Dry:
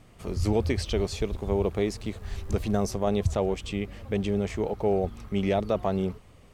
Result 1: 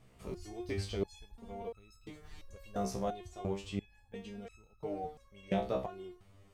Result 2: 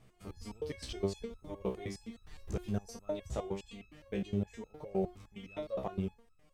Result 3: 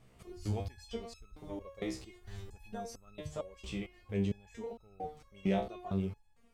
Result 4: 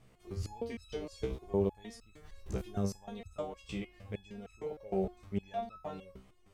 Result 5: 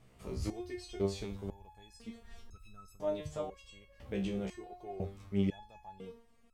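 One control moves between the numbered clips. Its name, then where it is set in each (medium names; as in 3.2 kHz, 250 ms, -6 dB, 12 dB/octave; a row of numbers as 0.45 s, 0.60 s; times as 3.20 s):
resonator arpeggio, rate: 2.9 Hz, 9.7 Hz, 4.4 Hz, 6.5 Hz, 2 Hz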